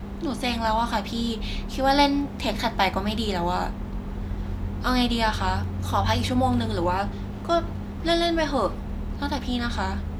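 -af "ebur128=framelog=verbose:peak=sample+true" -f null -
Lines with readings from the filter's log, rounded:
Integrated loudness:
  I:         -25.4 LUFS
  Threshold: -35.4 LUFS
Loudness range:
  LRA:         1.8 LU
  Threshold: -45.3 LUFS
  LRA low:   -26.3 LUFS
  LRA high:  -24.5 LUFS
Sample peak:
  Peak:       -6.8 dBFS
True peak:
  Peak:       -6.8 dBFS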